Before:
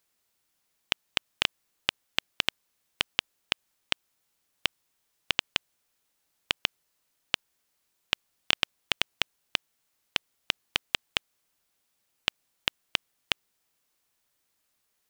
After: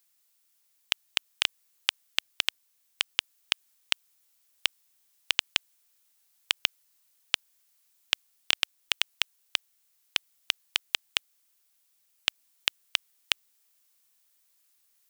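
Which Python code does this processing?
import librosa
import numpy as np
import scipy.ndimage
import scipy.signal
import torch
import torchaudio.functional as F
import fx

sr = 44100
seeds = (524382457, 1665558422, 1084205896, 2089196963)

p1 = fx.tilt_eq(x, sr, slope=3.0)
p2 = fx.rider(p1, sr, range_db=10, speed_s=0.5)
p3 = p1 + (p2 * librosa.db_to_amplitude(-2.5))
y = p3 * librosa.db_to_amplitude(-8.5)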